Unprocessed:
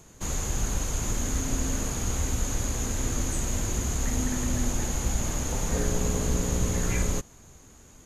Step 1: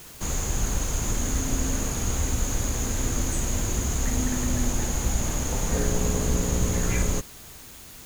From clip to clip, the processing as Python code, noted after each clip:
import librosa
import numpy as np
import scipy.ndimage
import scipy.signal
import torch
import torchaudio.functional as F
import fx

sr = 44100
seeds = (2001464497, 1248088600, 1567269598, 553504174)

y = fx.dmg_noise_colour(x, sr, seeds[0], colour='white', level_db=-48.0)
y = F.gain(torch.from_numpy(y), 2.0).numpy()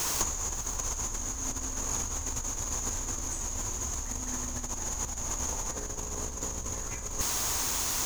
y = fx.graphic_eq_15(x, sr, hz=(160, 1000, 6300), db=(-8, 9, 10))
y = fx.over_compress(y, sr, threshold_db=-30.0, ratio=-0.5)
y = y + 10.0 ** (-16.5 / 20.0) * np.pad(y, (int(550 * sr / 1000.0), 0))[:len(y)]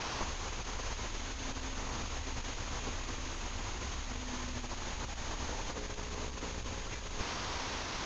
y = fx.cvsd(x, sr, bps=32000)
y = F.gain(torch.from_numpy(y), -2.5).numpy()